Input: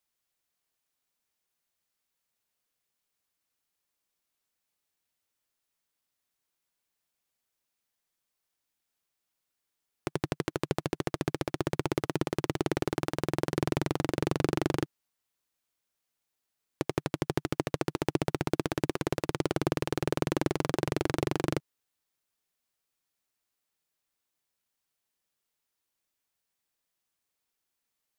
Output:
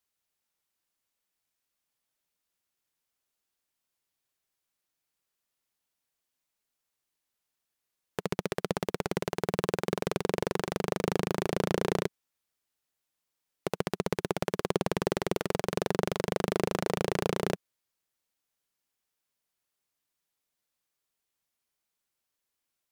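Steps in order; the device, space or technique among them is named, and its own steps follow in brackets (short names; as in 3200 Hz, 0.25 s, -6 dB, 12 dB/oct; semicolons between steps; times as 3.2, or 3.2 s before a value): nightcore (varispeed +23%)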